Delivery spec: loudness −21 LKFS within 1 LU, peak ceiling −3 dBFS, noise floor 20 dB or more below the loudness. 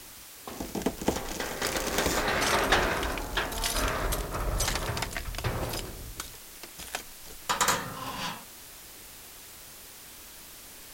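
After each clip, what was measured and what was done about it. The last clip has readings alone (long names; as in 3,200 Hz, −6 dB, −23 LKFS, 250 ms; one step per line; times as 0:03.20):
background noise floor −47 dBFS; target noise floor −50 dBFS; integrated loudness −30.0 LKFS; sample peak −10.0 dBFS; target loudness −21.0 LKFS
→ broadband denoise 6 dB, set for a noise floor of −47 dBFS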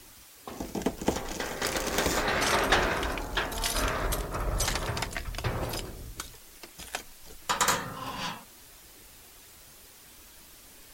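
background noise floor −52 dBFS; integrated loudness −30.0 LKFS; sample peak −10.0 dBFS; target loudness −21.0 LKFS
→ level +9 dB
brickwall limiter −3 dBFS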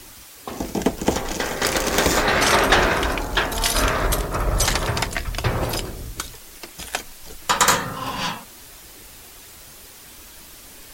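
integrated loudness −21.5 LKFS; sample peak −3.0 dBFS; background noise floor −43 dBFS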